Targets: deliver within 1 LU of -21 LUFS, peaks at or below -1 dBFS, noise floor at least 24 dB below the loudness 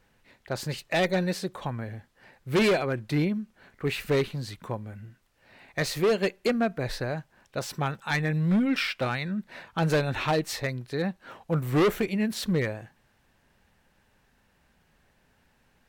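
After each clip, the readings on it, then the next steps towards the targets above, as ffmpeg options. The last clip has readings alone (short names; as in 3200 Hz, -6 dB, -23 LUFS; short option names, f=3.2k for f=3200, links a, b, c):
loudness -28.0 LUFS; peak -17.5 dBFS; loudness target -21.0 LUFS
-> -af "volume=7dB"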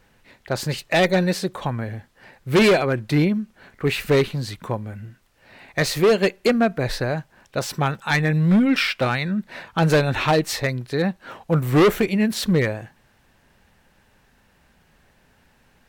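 loudness -21.0 LUFS; peak -10.5 dBFS; noise floor -60 dBFS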